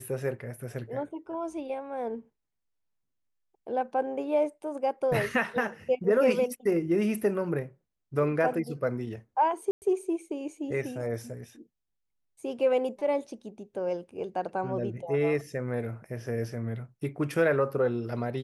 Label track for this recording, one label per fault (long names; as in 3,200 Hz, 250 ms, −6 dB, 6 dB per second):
9.710000	9.820000	drop-out 109 ms